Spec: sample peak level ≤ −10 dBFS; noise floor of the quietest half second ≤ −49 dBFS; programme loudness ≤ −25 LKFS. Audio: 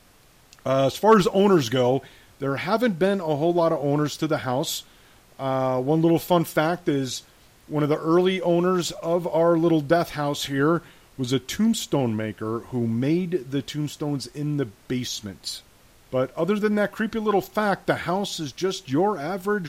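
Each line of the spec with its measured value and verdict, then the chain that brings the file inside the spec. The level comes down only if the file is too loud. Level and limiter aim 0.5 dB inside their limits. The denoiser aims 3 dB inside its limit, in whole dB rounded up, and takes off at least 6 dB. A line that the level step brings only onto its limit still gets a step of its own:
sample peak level −5.0 dBFS: out of spec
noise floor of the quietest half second −55 dBFS: in spec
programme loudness −23.5 LKFS: out of spec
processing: level −2 dB
brickwall limiter −10.5 dBFS

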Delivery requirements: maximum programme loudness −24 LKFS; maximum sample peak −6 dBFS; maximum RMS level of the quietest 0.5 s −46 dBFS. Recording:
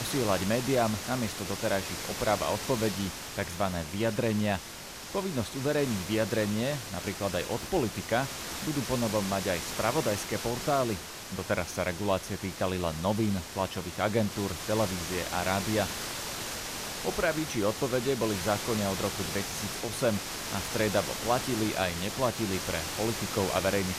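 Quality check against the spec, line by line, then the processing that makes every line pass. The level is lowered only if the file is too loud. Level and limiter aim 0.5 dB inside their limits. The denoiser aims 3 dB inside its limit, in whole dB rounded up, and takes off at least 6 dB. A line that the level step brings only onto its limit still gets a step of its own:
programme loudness −30.5 LKFS: in spec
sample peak −12.5 dBFS: in spec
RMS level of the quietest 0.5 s −43 dBFS: out of spec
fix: broadband denoise 6 dB, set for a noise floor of −43 dBFS

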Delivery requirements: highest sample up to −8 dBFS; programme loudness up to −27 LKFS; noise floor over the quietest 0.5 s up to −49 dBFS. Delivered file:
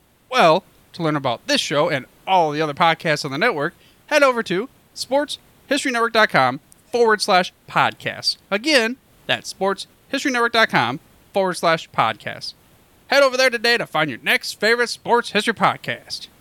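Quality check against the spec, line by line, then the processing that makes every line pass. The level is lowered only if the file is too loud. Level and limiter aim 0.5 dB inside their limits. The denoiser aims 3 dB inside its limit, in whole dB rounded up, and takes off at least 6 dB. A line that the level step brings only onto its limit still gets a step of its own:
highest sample −3.5 dBFS: out of spec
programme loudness −19.0 LKFS: out of spec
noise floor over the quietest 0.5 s −53 dBFS: in spec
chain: level −8.5 dB

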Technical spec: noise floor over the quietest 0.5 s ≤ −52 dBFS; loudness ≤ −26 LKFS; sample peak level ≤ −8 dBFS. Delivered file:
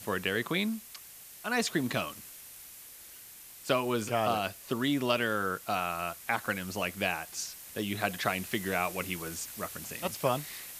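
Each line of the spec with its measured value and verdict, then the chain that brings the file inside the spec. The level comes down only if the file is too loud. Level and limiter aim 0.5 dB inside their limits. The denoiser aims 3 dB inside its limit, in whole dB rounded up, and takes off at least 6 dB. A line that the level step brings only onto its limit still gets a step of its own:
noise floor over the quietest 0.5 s −50 dBFS: out of spec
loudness −32.0 LKFS: in spec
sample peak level −11.5 dBFS: in spec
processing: broadband denoise 6 dB, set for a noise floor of −50 dBFS

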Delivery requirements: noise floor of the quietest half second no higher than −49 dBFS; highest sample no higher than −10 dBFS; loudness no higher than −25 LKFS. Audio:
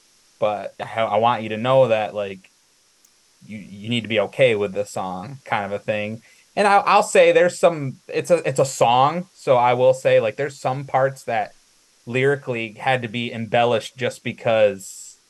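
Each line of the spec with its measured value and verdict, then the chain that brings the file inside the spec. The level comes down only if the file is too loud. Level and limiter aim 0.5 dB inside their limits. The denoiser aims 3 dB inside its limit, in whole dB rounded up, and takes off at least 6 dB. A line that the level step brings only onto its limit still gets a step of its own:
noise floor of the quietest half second −59 dBFS: in spec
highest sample −2.5 dBFS: out of spec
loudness −20.0 LKFS: out of spec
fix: level −5.5 dB
brickwall limiter −10.5 dBFS

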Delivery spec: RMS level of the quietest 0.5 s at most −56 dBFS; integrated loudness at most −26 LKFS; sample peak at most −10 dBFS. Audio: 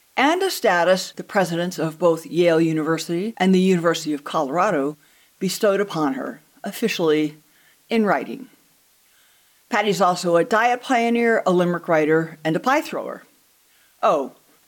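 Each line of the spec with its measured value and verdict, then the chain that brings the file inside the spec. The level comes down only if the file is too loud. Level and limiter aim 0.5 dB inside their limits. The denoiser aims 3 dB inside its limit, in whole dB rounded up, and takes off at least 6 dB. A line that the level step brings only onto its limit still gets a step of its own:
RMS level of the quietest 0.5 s −58 dBFS: in spec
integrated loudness −20.5 LKFS: out of spec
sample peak −7.0 dBFS: out of spec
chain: level −6 dB

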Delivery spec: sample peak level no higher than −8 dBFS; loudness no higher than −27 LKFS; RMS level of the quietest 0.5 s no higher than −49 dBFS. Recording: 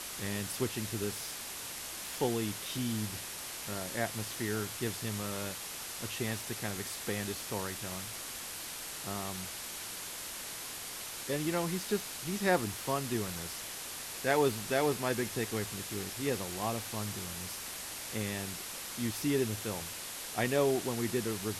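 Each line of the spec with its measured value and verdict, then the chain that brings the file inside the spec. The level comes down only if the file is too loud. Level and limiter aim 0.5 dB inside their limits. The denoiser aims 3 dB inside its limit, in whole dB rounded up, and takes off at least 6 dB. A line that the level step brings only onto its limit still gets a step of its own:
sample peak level −15.5 dBFS: in spec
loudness −35.0 LKFS: in spec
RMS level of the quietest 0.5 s −42 dBFS: out of spec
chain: broadband denoise 10 dB, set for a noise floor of −42 dBFS

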